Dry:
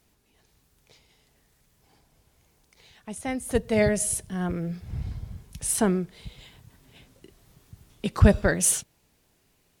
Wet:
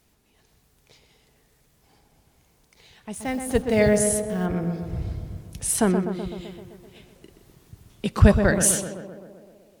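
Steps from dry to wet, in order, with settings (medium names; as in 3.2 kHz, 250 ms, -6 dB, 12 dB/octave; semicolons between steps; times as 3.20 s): 3.14–4.46 s: send-on-delta sampling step -45.5 dBFS; on a send: tape echo 127 ms, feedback 75%, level -5.5 dB, low-pass 1.5 kHz; on the sum: trim +2 dB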